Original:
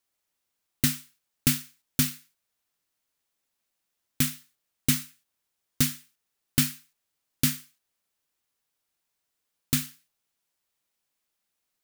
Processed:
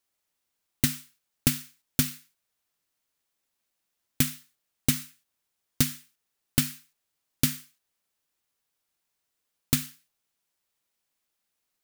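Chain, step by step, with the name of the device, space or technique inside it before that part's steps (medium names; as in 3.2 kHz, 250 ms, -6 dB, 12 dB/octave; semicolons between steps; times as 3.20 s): drum-bus smash (transient shaper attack +6 dB, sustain 0 dB; compression, threshold -17 dBFS, peak gain reduction 6.5 dB; saturation -6.5 dBFS, distortion -18 dB)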